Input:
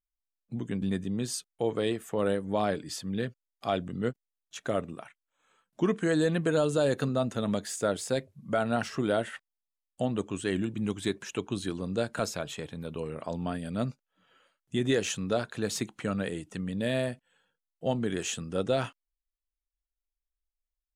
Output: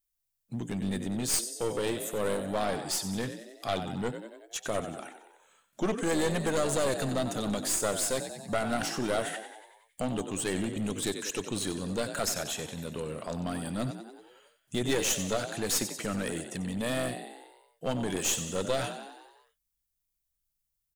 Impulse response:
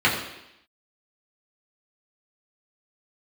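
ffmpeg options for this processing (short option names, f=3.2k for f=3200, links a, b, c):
-filter_complex "[0:a]crystalizer=i=2.5:c=0,asplit=8[a][b][c][d][e][f][g][h];[b]adelay=93,afreqshift=48,volume=-12dB[i];[c]adelay=186,afreqshift=96,volume=-16.6dB[j];[d]adelay=279,afreqshift=144,volume=-21.2dB[k];[e]adelay=372,afreqshift=192,volume=-25.7dB[l];[f]adelay=465,afreqshift=240,volume=-30.3dB[m];[g]adelay=558,afreqshift=288,volume=-34.9dB[n];[h]adelay=651,afreqshift=336,volume=-39.5dB[o];[a][i][j][k][l][m][n][o]amix=inputs=8:normalize=0,aeval=exprs='clip(val(0),-1,0.0316)':c=same"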